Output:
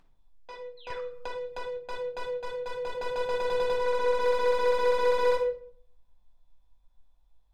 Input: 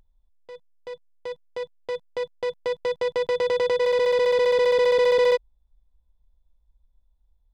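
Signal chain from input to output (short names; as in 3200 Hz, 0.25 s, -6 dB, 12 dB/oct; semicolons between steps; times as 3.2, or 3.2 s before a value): 3.74–4.2 high shelf 4800 Hz -10.5 dB; overdrive pedal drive 17 dB, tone 4300 Hz, clips at -22.5 dBFS; 0.77–1 painted sound fall 1100–4300 Hz -49 dBFS; 2.33–2.97 AM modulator 35 Hz, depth 30%; reverb RT60 0.55 s, pre-delay 4 ms, DRR -2 dB; 0.9–1.77 three-band squash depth 100%; gain -8.5 dB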